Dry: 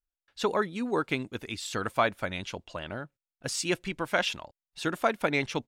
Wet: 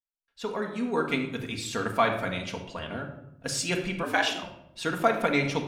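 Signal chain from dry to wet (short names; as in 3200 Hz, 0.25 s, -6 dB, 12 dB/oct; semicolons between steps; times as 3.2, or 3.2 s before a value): opening faded in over 1.08 s; de-hum 100.7 Hz, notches 34; on a send at -1.5 dB: reverb RT60 0.80 s, pre-delay 4 ms; 4.03–4.43 on the sum: frequency shift +95 Hz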